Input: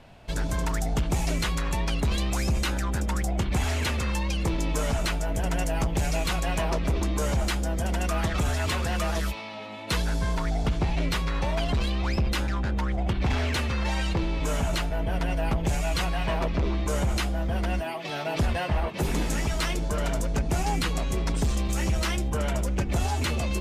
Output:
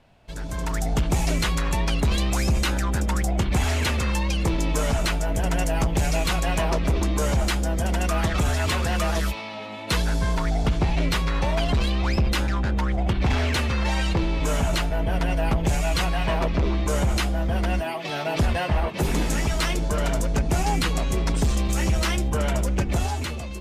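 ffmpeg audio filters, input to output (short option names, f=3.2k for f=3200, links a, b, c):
-af "dynaudnorm=f=100:g=13:m=11dB,volume=-7dB"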